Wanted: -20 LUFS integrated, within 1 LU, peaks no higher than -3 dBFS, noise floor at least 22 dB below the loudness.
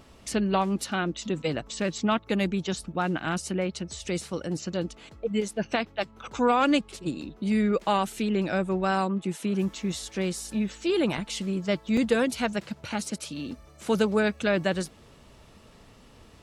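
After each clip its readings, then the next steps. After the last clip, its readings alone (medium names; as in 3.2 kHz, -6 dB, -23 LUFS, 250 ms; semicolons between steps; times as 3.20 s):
dropouts 1; longest dropout 3.1 ms; loudness -28.0 LUFS; peak level -10.0 dBFS; loudness target -20.0 LUFS
-> interpolate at 11.97 s, 3.1 ms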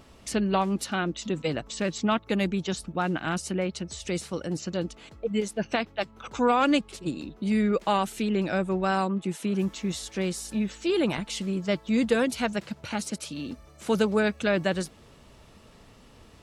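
dropouts 0; loudness -28.0 LUFS; peak level -10.0 dBFS; loudness target -20.0 LUFS
-> trim +8 dB; peak limiter -3 dBFS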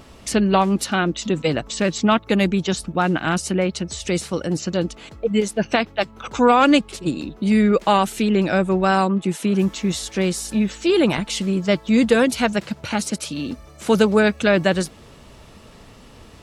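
loudness -20.0 LUFS; peak level -3.0 dBFS; noise floor -45 dBFS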